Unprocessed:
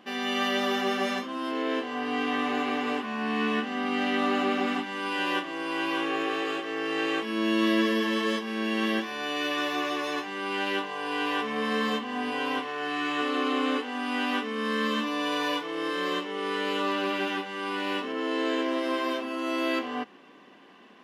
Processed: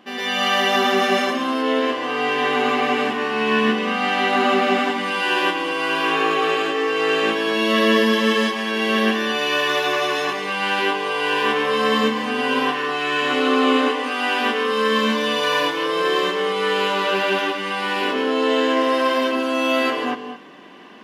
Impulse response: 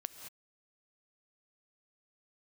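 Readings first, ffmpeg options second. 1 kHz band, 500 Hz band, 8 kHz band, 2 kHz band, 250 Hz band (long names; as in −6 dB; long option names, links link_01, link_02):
+9.5 dB, +10.5 dB, +10.0 dB, +9.5 dB, +5.5 dB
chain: -filter_complex "[0:a]asplit=2[link_01][link_02];[1:a]atrim=start_sample=2205,adelay=111[link_03];[link_02][link_03]afir=irnorm=-1:irlink=0,volume=7.5dB[link_04];[link_01][link_04]amix=inputs=2:normalize=0,volume=3.5dB"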